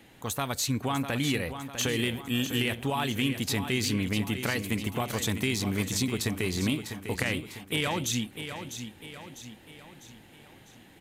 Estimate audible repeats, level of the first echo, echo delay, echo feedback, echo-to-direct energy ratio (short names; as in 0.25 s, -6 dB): 5, -9.5 dB, 0.65 s, 48%, -8.5 dB